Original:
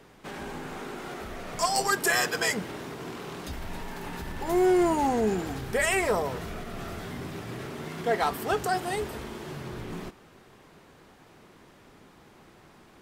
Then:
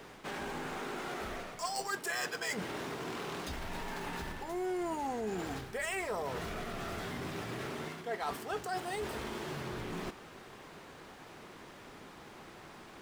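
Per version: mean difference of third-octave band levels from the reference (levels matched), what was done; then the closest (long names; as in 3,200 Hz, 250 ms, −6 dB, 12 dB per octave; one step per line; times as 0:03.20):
7.0 dB: running median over 3 samples
low-shelf EQ 340 Hz −6 dB
reversed playback
downward compressor 4 to 1, threshold −42 dBFS, peak gain reduction 17 dB
reversed playback
level +5 dB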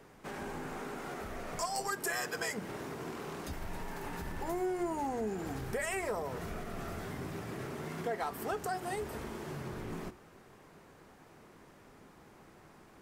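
4.0 dB: parametric band 3,500 Hz −5.5 dB 0.99 octaves
mains-hum notches 60/120/180/240/300/360 Hz
downward compressor 3 to 1, threshold −32 dBFS, peak gain reduction 10 dB
level −2.5 dB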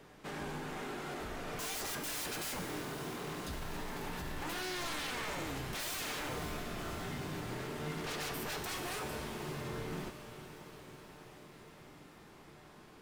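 9.0 dB: wave folding −32 dBFS
tuned comb filter 150 Hz, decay 1.6 s, mix 80%
on a send: feedback delay with all-pass diffusion 543 ms, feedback 66%, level −12.5 dB
on the sum: level +9.5 dB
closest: second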